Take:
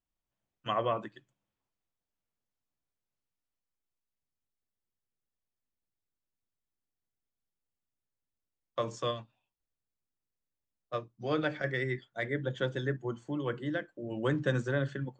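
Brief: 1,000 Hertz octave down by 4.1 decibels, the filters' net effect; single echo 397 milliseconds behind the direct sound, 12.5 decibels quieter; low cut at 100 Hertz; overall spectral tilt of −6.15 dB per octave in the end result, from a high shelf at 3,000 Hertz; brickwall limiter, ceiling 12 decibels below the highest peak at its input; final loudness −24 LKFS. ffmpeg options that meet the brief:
ffmpeg -i in.wav -af "highpass=100,equalizer=frequency=1000:width_type=o:gain=-4,highshelf=frequency=3000:gain=-8.5,alimiter=level_in=6.5dB:limit=-24dB:level=0:latency=1,volume=-6.5dB,aecho=1:1:397:0.237,volume=17dB" out.wav

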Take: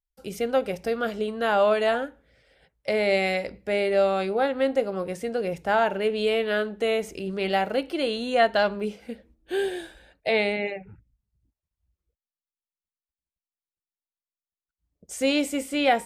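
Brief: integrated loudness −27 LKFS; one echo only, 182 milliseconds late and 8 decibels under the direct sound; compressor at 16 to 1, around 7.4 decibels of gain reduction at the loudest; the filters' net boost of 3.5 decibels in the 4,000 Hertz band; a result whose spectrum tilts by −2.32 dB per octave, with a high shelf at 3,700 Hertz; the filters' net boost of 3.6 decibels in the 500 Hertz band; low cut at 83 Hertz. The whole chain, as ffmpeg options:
ffmpeg -i in.wav -af "highpass=83,equalizer=frequency=500:width_type=o:gain=4.5,highshelf=frequency=3700:gain=-5.5,equalizer=frequency=4000:width_type=o:gain=8,acompressor=threshold=-20dB:ratio=16,aecho=1:1:182:0.398,volume=-1.5dB" out.wav

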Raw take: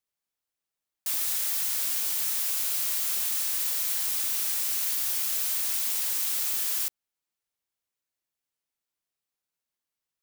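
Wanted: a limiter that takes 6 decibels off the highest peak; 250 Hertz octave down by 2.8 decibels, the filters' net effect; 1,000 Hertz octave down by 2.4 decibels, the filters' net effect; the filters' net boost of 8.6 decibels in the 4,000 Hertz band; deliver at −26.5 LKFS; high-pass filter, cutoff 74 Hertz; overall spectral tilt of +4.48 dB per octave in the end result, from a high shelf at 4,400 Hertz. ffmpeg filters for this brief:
ffmpeg -i in.wav -af "highpass=74,equalizer=frequency=250:width_type=o:gain=-3.5,equalizer=frequency=1000:width_type=o:gain=-4,equalizer=frequency=4000:width_type=o:gain=8,highshelf=frequency=4400:gain=5,volume=-4.5dB,alimiter=limit=-19.5dB:level=0:latency=1" out.wav

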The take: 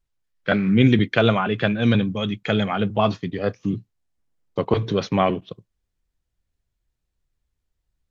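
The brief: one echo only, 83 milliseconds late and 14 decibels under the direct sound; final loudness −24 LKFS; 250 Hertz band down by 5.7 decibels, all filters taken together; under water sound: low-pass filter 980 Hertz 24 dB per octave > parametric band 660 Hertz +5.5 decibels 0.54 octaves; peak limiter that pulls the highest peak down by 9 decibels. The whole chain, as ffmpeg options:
ffmpeg -i in.wav -af "equalizer=frequency=250:width_type=o:gain=-7.5,alimiter=limit=-13.5dB:level=0:latency=1,lowpass=frequency=980:width=0.5412,lowpass=frequency=980:width=1.3066,equalizer=frequency=660:width_type=o:width=0.54:gain=5.5,aecho=1:1:83:0.2,volume=2dB" out.wav

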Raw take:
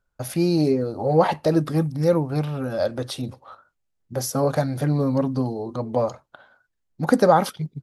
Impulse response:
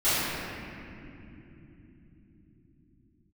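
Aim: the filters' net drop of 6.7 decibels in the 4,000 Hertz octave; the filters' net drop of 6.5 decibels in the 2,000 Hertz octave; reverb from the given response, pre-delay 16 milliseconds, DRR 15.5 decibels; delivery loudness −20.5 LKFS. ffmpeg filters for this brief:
-filter_complex "[0:a]equalizer=frequency=2000:width_type=o:gain=-8.5,equalizer=frequency=4000:width_type=o:gain=-6.5,asplit=2[link_01][link_02];[1:a]atrim=start_sample=2205,adelay=16[link_03];[link_02][link_03]afir=irnorm=-1:irlink=0,volume=-32dB[link_04];[link_01][link_04]amix=inputs=2:normalize=0,volume=2.5dB"

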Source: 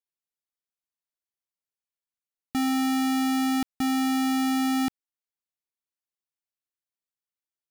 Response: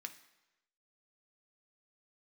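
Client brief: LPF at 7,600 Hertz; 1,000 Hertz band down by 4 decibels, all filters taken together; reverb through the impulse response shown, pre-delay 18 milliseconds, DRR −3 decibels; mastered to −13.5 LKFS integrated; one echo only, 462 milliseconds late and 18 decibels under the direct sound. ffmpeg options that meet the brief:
-filter_complex "[0:a]lowpass=7600,equalizer=frequency=1000:width_type=o:gain=-6,aecho=1:1:462:0.126,asplit=2[link_01][link_02];[1:a]atrim=start_sample=2205,adelay=18[link_03];[link_02][link_03]afir=irnorm=-1:irlink=0,volume=6dB[link_04];[link_01][link_04]amix=inputs=2:normalize=0,volume=11.5dB"

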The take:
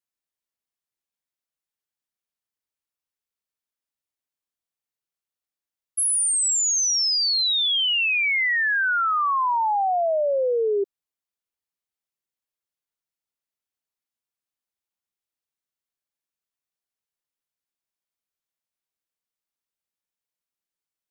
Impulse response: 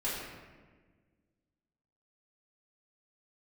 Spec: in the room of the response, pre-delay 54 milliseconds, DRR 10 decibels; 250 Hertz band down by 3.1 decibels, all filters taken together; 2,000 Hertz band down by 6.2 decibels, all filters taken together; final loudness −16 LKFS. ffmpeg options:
-filter_complex "[0:a]equalizer=frequency=250:width_type=o:gain=-8,equalizer=frequency=2000:width_type=o:gain=-8,asplit=2[link_01][link_02];[1:a]atrim=start_sample=2205,adelay=54[link_03];[link_02][link_03]afir=irnorm=-1:irlink=0,volume=-16dB[link_04];[link_01][link_04]amix=inputs=2:normalize=0,volume=6dB"

